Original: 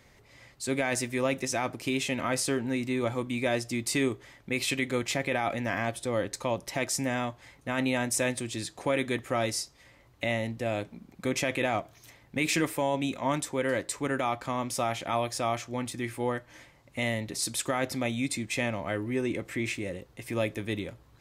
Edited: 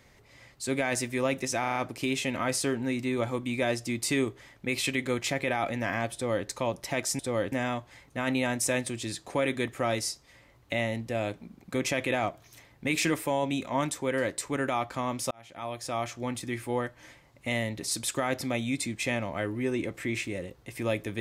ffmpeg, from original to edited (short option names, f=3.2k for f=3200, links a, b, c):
-filter_complex "[0:a]asplit=8[a][b][c][d][e][f][g][h];[a]atrim=end=1.642[i];[b]atrim=start=1.598:end=1.642[j];[c]atrim=start=1.598:end=1.642[k];[d]atrim=start=1.598:end=1.642[l];[e]atrim=start=1.598:end=7.032[m];[f]atrim=start=5.978:end=6.312[n];[g]atrim=start=7.028:end=14.82,asetpts=PTS-STARTPTS,afade=t=out:st=7.788:d=0.004:c=hsin[o];[h]atrim=start=14.82,asetpts=PTS-STARTPTS,afade=t=in:d=0.87[p];[i][j]acrossfade=d=0.004:c1=hsin:c2=hsin[q];[q][k]acrossfade=d=0.004:c1=hsin:c2=hsin[r];[r][l]acrossfade=d=0.004:c1=hsin:c2=hsin[s];[s][m]acrossfade=d=0.004:c1=hsin:c2=hsin[t];[t][n]acrossfade=d=0.004:c1=hsin:c2=hsin[u];[o][p]concat=n=2:v=0:a=1[v];[u][v]acrossfade=d=0.004:c1=hsin:c2=hsin"